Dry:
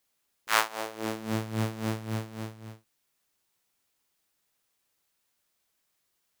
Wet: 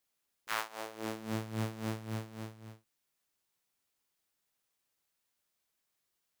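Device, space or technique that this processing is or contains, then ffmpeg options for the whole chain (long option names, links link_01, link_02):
limiter into clipper: -af "alimiter=limit=-8.5dB:level=0:latency=1:release=353,asoftclip=type=hard:threshold=-12.5dB,volume=-6dB"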